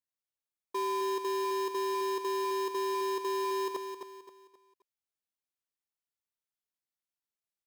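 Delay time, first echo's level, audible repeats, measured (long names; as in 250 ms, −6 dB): 264 ms, −7.5 dB, 4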